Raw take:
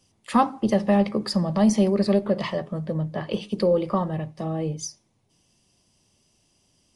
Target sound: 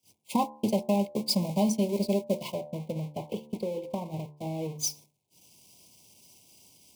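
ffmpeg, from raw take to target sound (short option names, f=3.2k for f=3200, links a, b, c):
-filter_complex "[0:a]aeval=exprs='val(0)+0.5*0.0501*sgn(val(0))':c=same,highpass=f=50:w=0.5412,highpass=f=50:w=1.3066,highshelf=f=6.2k:g=7,acompressor=threshold=-21dB:ratio=10,agate=range=-52dB:threshold=-24dB:ratio=16:detection=peak,asuperstop=centerf=1500:order=20:qfactor=1.4,lowshelf=f=72:g=-9.5,bandreject=f=74.34:t=h:w=4,bandreject=f=148.68:t=h:w=4,bandreject=f=223.02:t=h:w=4,bandreject=f=297.36:t=h:w=4,bandreject=f=371.7:t=h:w=4,bandreject=f=446.04:t=h:w=4,bandreject=f=520.38:t=h:w=4,bandreject=f=594.72:t=h:w=4,bandreject=f=669.06:t=h:w=4,bandreject=f=743.4:t=h:w=4,bandreject=f=817.74:t=h:w=4,bandreject=f=892.08:t=h:w=4,bandreject=f=966.42:t=h:w=4,bandreject=f=1.04076k:t=h:w=4,bandreject=f=1.1151k:t=h:w=4,bandreject=f=1.18944k:t=h:w=4,bandreject=f=1.26378k:t=h:w=4,bandreject=f=1.33812k:t=h:w=4,bandreject=f=1.41246k:t=h:w=4,bandreject=f=1.4868k:t=h:w=4,bandreject=f=1.56114k:t=h:w=4,asettb=1/sr,asplit=3[a][b][c];[a]atrim=end=2.514[d];[b]atrim=start=2.51:end=4.79,asetpts=PTS-STARTPTS,afade=t=in:d=0.004:c=qsin,afade=t=out:st=2.276:d=0.004:c=qsin,acrossover=split=1800|3700[e][f][g];[e]acompressor=threshold=-31dB:ratio=4[h];[f]acompressor=threshold=-58dB:ratio=4[i];[g]acompressor=threshold=-57dB:ratio=4[j];[h][i][j]amix=inputs=3:normalize=0[k];[c]atrim=start=4.786[l];[d][k]acrossfade=d=0.004:c1=hsin:c2=qsin[m];[m][l]acrossfade=d=0.004:c1=qsin:c2=hsin,volume=1dB"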